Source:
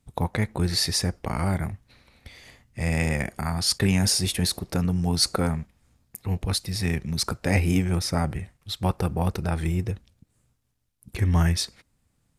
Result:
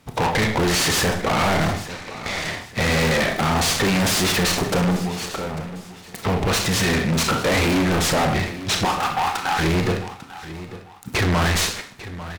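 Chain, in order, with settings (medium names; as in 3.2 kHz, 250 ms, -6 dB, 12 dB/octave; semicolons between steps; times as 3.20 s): overdrive pedal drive 27 dB, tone 2.1 kHz, clips at -8 dBFS; 4.96–6.23 s: compression 6:1, threshold -33 dBFS, peak gain reduction 16.5 dB; 8.85–9.59 s: brick-wall FIR high-pass 700 Hz; Schroeder reverb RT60 0.49 s, combs from 25 ms, DRR 5.5 dB; saturation -16 dBFS, distortion -14 dB; feedback delay 846 ms, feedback 31%, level -17 dB; hard clipper -21.5 dBFS, distortion -13 dB; delay time shaken by noise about 1.5 kHz, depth 0.042 ms; trim +4.5 dB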